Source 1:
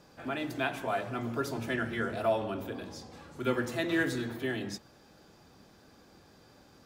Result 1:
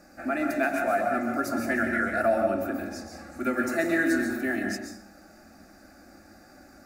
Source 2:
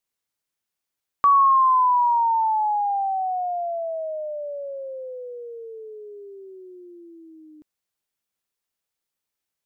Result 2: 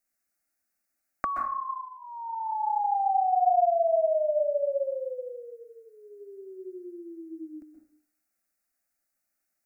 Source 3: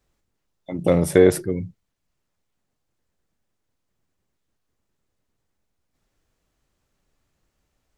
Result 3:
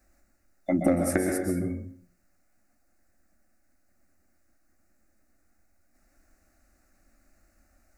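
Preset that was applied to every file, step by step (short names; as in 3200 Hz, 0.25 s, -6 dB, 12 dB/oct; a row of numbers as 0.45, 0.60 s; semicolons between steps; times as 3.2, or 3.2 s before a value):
compressor 16:1, threshold -26 dBFS; fixed phaser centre 660 Hz, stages 8; plate-style reverb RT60 0.57 s, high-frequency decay 0.7×, pre-delay 0.115 s, DRR 3.5 dB; match loudness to -27 LUFS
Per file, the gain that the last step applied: +8.0, +4.0, +8.5 dB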